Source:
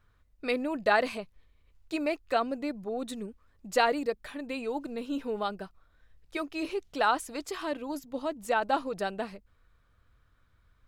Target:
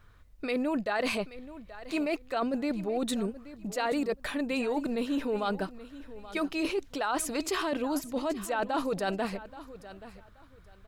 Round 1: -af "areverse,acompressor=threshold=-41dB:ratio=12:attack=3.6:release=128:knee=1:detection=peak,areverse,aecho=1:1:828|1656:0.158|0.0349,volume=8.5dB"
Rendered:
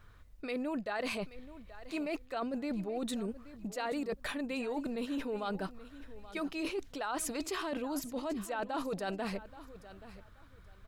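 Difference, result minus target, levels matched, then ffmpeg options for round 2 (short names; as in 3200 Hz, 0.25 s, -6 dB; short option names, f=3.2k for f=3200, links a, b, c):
compressor: peak gain reduction +6.5 dB
-af "areverse,acompressor=threshold=-34dB:ratio=12:attack=3.6:release=128:knee=1:detection=peak,areverse,aecho=1:1:828|1656:0.158|0.0349,volume=8.5dB"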